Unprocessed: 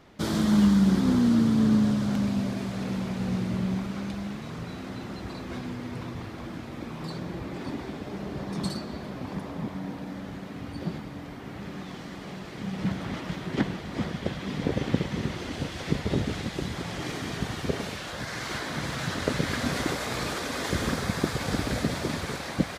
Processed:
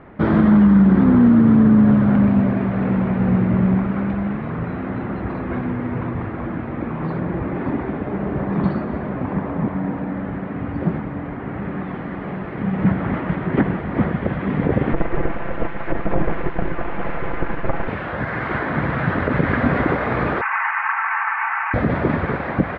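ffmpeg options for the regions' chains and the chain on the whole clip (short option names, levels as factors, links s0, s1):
-filter_complex "[0:a]asettb=1/sr,asplit=3[s0][s1][s2];[s0]atrim=end=14.934[s3];[s1]atrim=start=14.93:end=17.88,asetpts=PTS-STARTPTS,afade=t=in:d=0.004:c=qsin,afade=t=out:st=2.946:d=0.004:c=qsin,lowpass=2900,aeval=exprs='abs(val(0))':c=same,aecho=1:1:5.9:0.44,atrim=end_sample=130095[s4];[s2]atrim=start=17.876[s5];[s3][s4]acrossfade=d=0.004:c1=hsin:c2=qsin[s6];[s6][s5]acrossfade=d=0.004:c1=qsin:c2=hsin,asettb=1/sr,asplit=3[s7][s8][s9];[s7]atrim=end=20.414[s10];[s8]atrim=start=20.41:end=21.74,asetpts=PTS-STARTPTS,afade=t=in:d=0.004:c=qsin,afade=t=out:st=1.326:d=0.004:c=qsin,aeval=exprs='val(0)+0.5*0.0355*sgn(val(0))':c=same,asuperpass=centerf=1500:order=20:qfactor=0.75,aecho=1:1:4.5:0.52,atrim=end_sample=58653[s11];[s9]atrim=start=21.736[s12];[s10][s11]acrossfade=d=0.004:c1=hsin:c2=qsin[s13];[s13][s12]acrossfade=d=0.004:c1=qsin:c2=hsin,lowpass=f=2000:w=0.5412,lowpass=f=2000:w=1.3066,alimiter=level_in=6.68:limit=0.891:release=50:level=0:latency=1,volume=0.562"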